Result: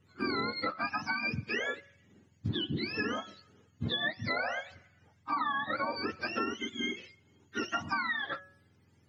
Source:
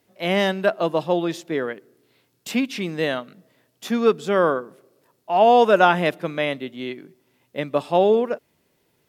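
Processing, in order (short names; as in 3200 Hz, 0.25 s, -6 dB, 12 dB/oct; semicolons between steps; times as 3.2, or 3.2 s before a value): spectrum mirrored in octaves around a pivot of 900 Hz; compressor 16:1, threshold -28 dBFS, peak gain reduction 18 dB; de-hum 186.7 Hz, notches 9; gain -1 dB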